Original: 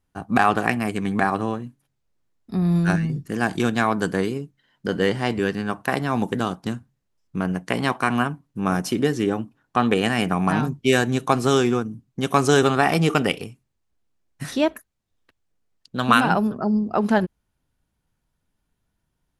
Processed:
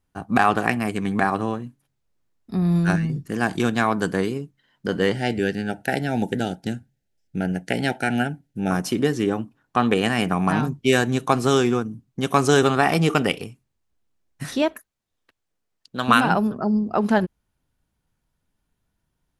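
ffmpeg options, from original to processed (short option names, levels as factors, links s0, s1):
-filter_complex "[0:a]asettb=1/sr,asplit=3[s0][s1][s2];[s0]atrim=end=5.144[s3];[s1]atrim=start=5.14:end=8.71,asetpts=PTS-STARTPTS,afade=t=in:d=0.004:c=qsin,afade=t=out:st=3.566:d=0.004:c=qsin,asuperstop=centerf=1100:order=8:qfactor=2.2[s4];[s2]atrim=start=8.706[s5];[s3][s4]acrossfade=d=0.004:c1=hsin:c2=qsin[s6];[s6][s5]acrossfade=d=0.004:c1=qsin:c2=hsin,asettb=1/sr,asplit=3[s7][s8][s9];[s7]atrim=end=14.624[s10];[s8]atrim=start=14.62:end=16.08,asetpts=PTS-STARTPTS,afade=t=in:d=0.004:c=qsin,afade=t=out:st=1.456:d=0.004:c=qsin,lowshelf=f=220:g=-7.5[s11];[s9]atrim=start=16.076[s12];[s10][s11]acrossfade=d=0.004:c1=hsin:c2=qsin[s13];[s13][s12]acrossfade=d=0.004:c1=qsin:c2=hsin"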